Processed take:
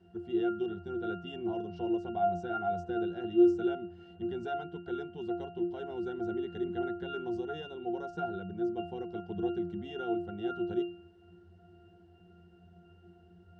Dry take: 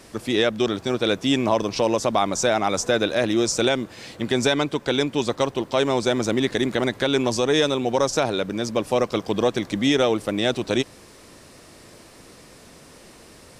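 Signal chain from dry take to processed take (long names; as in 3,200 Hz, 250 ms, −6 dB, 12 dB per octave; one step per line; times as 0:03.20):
resonances in every octave F, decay 0.41 s
level +5 dB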